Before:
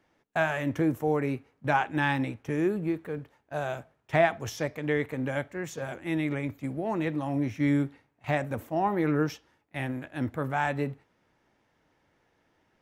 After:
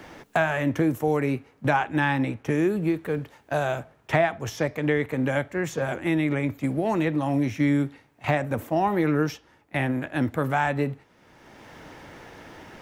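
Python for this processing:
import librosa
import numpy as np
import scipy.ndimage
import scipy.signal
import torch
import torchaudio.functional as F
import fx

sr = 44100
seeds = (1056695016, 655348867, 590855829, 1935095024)

y = fx.band_squash(x, sr, depth_pct=70)
y = y * librosa.db_to_amplitude(4.0)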